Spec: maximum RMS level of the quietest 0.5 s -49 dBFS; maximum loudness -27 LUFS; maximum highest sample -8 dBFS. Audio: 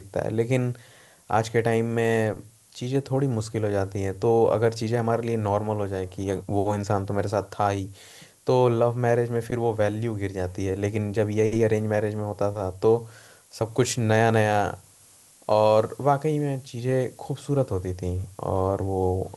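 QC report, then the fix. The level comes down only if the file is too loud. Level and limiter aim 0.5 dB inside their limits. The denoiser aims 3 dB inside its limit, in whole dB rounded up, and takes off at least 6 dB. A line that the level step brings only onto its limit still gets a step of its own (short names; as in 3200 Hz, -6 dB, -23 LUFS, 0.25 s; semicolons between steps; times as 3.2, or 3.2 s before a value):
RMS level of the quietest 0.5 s -54 dBFS: OK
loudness -25.0 LUFS: fail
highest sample -6.5 dBFS: fail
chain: gain -2.5 dB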